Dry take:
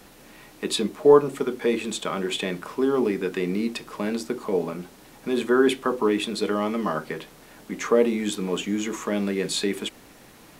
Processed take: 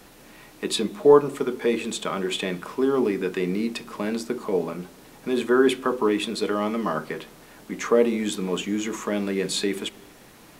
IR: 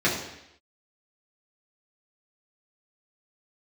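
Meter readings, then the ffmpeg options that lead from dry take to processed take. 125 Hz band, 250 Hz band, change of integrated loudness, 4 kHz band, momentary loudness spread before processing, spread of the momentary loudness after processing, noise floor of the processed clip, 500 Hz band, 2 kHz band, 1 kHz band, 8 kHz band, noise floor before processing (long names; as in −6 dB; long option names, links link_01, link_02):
0.0 dB, 0.0 dB, 0.0 dB, 0.0 dB, 13 LU, 13 LU, −50 dBFS, +0.5 dB, 0.0 dB, +0.5 dB, 0.0 dB, −50 dBFS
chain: -filter_complex "[0:a]asplit=2[link_01][link_02];[1:a]atrim=start_sample=2205,asetrate=25137,aresample=44100[link_03];[link_02][link_03]afir=irnorm=-1:irlink=0,volume=-38dB[link_04];[link_01][link_04]amix=inputs=2:normalize=0"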